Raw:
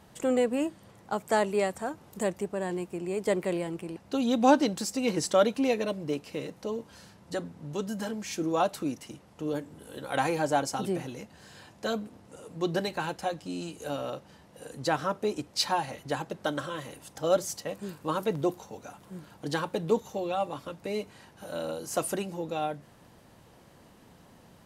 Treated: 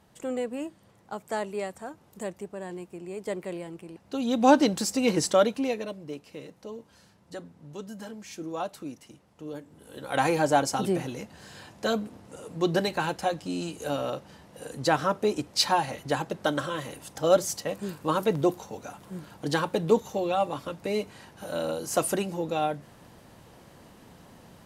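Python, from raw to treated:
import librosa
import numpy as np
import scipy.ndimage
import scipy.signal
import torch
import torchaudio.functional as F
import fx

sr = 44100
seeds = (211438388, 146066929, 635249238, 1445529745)

y = fx.gain(x, sr, db=fx.line((3.92, -5.5), (4.63, 4.0), (5.2, 4.0), (6.01, -6.5), (9.65, -6.5), (10.28, 4.0)))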